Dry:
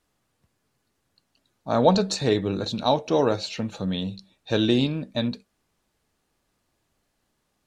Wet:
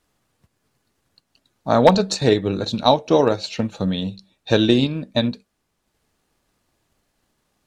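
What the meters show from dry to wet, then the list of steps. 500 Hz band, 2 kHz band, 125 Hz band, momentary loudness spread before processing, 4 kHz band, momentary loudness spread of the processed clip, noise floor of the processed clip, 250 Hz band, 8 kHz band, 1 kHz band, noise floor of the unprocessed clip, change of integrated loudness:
+5.5 dB, +6.0 dB, +4.5 dB, 11 LU, +4.5 dB, 11 LU, -74 dBFS, +4.5 dB, +3.5 dB, +5.5 dB, -74 dBFS, +5.0 dB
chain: wavefolder -8 dBFS; transient shaper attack +4 dB, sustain -4 dB; trim +4 dB

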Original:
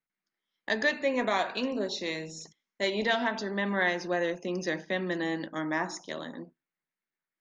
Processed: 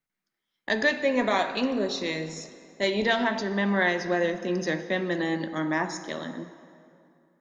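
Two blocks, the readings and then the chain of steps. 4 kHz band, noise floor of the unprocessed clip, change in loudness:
+2.5 dB, under -85 dBFS, +3.5 dB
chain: bass shelf 190 Hz +6 dB; plate-style reverb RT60 2.6 s, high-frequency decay 0.65×, DRR 10.5 dB; trim +2.5 dB

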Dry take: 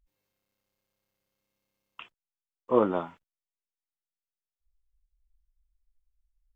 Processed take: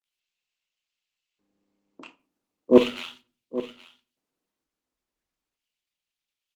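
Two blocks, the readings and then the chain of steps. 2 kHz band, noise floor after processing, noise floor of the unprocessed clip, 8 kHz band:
+9.0 dB, under -85 dBFS, under -85 dBFS, no reading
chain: median filter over 25 samples; treble shelf 2.2 kHz +2 dB; in parallel at -2.5 dB: peak limiter -20.5 dBFS, peak gain reduction 11.5 dB; on the sum: bands offset in time lows, highs 40 ms, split 620 Hz; LFO high-pass square 0.36 Hz 260–2900 Hz; on a send: delay 822 ms -15 dB; on the sum: simulated room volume 240 m³, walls furnished, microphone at 0.52 m; trim +5 dB; Opus 20 kbps 48 kHz

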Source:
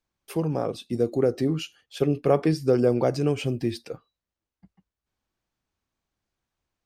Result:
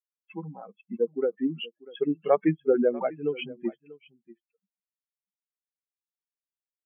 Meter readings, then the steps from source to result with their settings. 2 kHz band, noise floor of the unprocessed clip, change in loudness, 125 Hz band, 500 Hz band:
-2.0 dB, under -85 dBFS, -2.5 dB, -13.5 dB, -2.5 dB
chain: expander on every frequency bin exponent 3; brick-wall FIR band-pass 160–3400 Hz; delay 641 ms -20.5 dB; trim +3.5 dB

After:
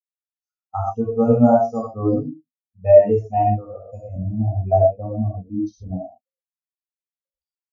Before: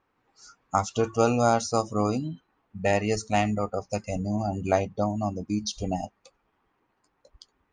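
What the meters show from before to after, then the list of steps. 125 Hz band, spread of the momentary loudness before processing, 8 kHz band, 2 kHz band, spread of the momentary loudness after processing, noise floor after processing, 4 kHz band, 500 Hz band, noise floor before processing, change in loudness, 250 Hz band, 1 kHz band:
+7.5 dB, 9 LU, under -20 dB, under -10 dB, 19 LU, under -85 dBFS, under -25 dB, +9.5 dB, -74 dBFS, +8.0 dB, +6.5 dB, +4.5 dB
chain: gated-style reverb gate 150 ms flat, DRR -3 dB; spectral contrast expander 2.5:1; trim +3.5 dB

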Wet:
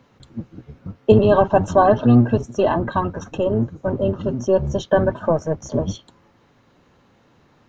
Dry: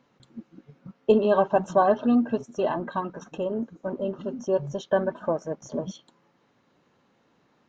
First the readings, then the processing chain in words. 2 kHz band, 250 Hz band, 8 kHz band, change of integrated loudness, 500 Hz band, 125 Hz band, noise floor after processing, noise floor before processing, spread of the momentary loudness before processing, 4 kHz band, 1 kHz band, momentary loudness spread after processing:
+6.5 dB, +7.0 dB, no reading, +7.0 dB, +6.5 dB, +17.0 dB, -57 dBFS, -67 dBFS, 13 LU, +7.0 dB, +6.5 dB, 21 LU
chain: octave divider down 1 oct, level -1 dB; in parallel at -3 dB: peak limiter -17.5 dBFS, peak gain reduction 11 dB; on the sum: trim +3.5 dB

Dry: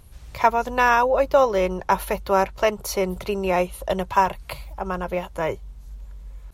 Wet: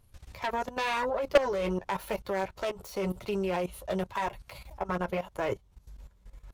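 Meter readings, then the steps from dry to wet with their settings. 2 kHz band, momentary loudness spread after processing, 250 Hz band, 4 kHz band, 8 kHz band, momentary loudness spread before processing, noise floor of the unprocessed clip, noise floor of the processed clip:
-9.5 dB, 10 LU, -6.0 dB, -5.5 dB, -12.0 dB, 18 LU, -44 dBFS, -62 dBFS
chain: self-modulated delay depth 0.24 ms; flange 0.93 Hz, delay 8.5 ms, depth 3.8 ms, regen -18%; level held to a coarse grid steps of 16 dB; wavefolder -14 dBFS; trim +2.5 dB

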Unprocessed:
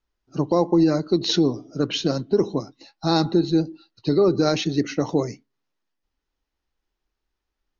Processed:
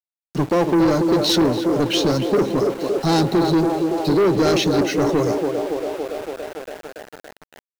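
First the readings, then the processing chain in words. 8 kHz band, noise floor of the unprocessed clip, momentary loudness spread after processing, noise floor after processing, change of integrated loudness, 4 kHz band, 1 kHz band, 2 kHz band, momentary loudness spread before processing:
no reading, -82 dBFS, 14 LU, under -85 dBFS, +3.0 dB, +4.0 dB, +6.5 dB, +7.5 dB, 11 LU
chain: band-passed feedback delay 282 ms, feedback 81%, band-pass 610 Hz, level -5 dB; waveshaping leveller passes 3; small samples zeroed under -28.5 dBFS; trim -4.5 dB

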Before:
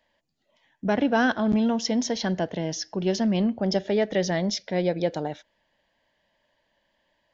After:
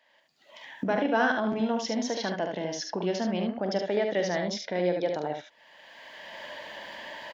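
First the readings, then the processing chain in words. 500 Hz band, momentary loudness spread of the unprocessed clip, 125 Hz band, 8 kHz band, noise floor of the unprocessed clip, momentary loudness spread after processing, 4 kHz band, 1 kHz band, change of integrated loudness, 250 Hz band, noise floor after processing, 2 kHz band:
-1.5 dB, 8 LU, -7.5 dB, no reading, -73 dBFS, 16 LU, -3.5 dB, -0.5 dB, -4.0 dB, -6.0 dB, -64 dBFS, -0.5 dB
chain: recorder AGC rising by 25 dB/s; high-pass 550 Hz 6 dB/octave; treble shelf 3.8 kHz -11.5 dB; early reflections 45 ms -10 dB, 73 ms -5 dB; tape noise reduction on one side only encoder only

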